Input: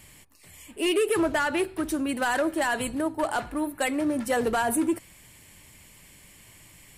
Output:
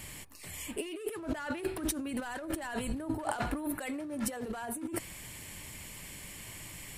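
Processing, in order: 2.11–3.22 s: bass shelf 120 Hz +10 dB; compressor with a negative ratio -35 dBFS, ratio -1; trim -2 dB

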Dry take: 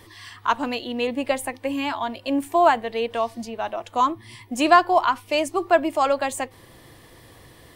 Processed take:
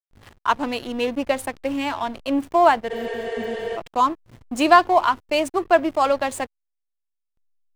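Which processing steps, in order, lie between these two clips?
hysteresis with a dead band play -30.5 dBFS; spectral replace 2.93–3.74 s, 270–11000 Hz before; trim +1.5 dB

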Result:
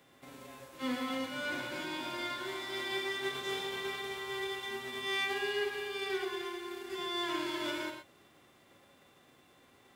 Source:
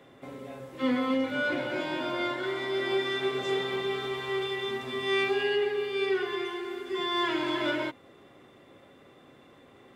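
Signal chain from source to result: formants flattened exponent 0.6; gated-style reverb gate 140 ms rising, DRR 4.5 dB; trim -9 dB

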